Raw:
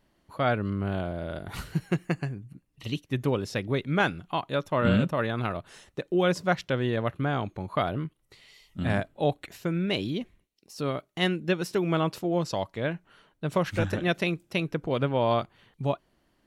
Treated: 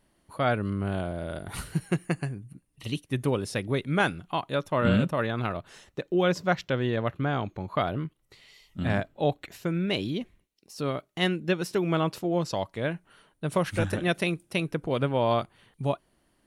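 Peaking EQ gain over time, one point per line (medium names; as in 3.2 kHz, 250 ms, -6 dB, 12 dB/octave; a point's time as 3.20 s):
peaking EQ 9.5 kHz 0.27 oct
+14.5 dB
from 4.15 s +6.5 dB
from 5.23 s -3.5 dB
from 6.07 s -10 dB
from 7.89 s -1.5 dB
from 8.88 s -8 dB
from 9.53 s +2.5 dB
from 12.72 s +14 dB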